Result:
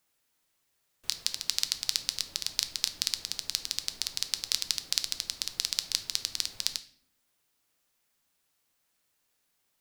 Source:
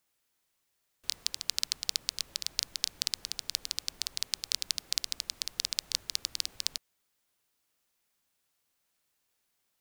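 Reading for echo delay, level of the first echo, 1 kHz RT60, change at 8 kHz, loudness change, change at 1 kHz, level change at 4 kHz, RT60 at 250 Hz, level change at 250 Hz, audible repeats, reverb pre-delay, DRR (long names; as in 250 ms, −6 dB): no echo audible, no echo audible, 0.45 s, +2.5 dB, +2.5 dB, +2.5 dB, +2.5 dB, 1.1 s, +3.0 dB, no echo audible, 6 ms, 9.5 dB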